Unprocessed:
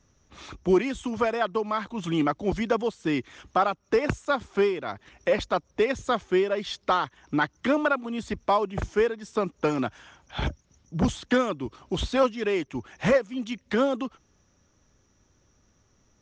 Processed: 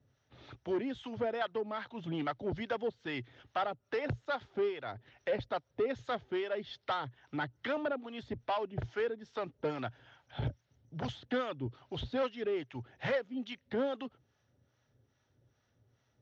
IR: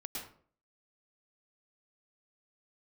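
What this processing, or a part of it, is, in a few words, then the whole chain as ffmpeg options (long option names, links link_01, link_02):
guitar amplifier with harmonic tremolo: -filter_complex "[0:a]acrossover=split=650[link_01][link_02];[link_01]aeval=exprs='val(0)*(1-0.7/2+0.7/2*cos(2*PI*2.4*n/s))':channel_layout=same[link_03];[link_02]aeval=exprs='val(0)*(1-0.7/2-0.7/2*cos(2*PI*2.4*n/s))':channel_layout=same[link_04];[link_03][link_04]amix=inputs=2:normalize=0,asoftclip=type=tanh:threshold=-21.5dB,highpass=99,equalizer=frequency=120:width_type=q:width=4:gain=10,equalizer=frequency=190:width_type=q:width=4:gain=-10,equalizer=frequency=330:width_type=q:width=4:gain=-5,equalizer=frequency=1100:width_type=q:width=4:gain=-9,equalizer=frequency=2400:width_type=q:width=4:gain=-5,lowpass=frequency=4200:width=0.5412,lowpass=frequency=4200:width=1.3066,volume=-2.5dB"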